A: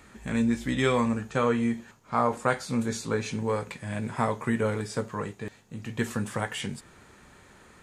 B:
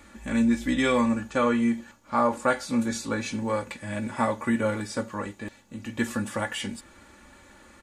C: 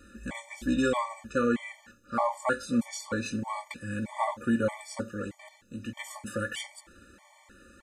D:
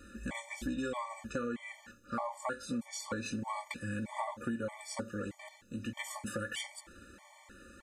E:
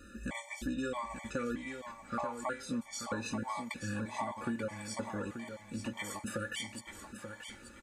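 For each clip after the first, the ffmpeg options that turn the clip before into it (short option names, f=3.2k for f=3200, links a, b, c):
-af "aecho=1:1:3.5:0.73"
-af "afftfilt=real='re*gt(sin(2*PI*1.6*pts/sr)*(1-2*mod(floor(b*sr/1024/600),2)),0)':imag='im*gt(sin(2*PI*1.6*pts/sr)*(1-2*mod(floor(b*sr/1024/600),2)),0)':win_size=1024:overlap=0.75,volume=-1dB"
-af "acompressor=threshold=-34dB:ratio=6"
-af "aecho=1:1:884|1768|2652:0.376|0.0864|0.0199"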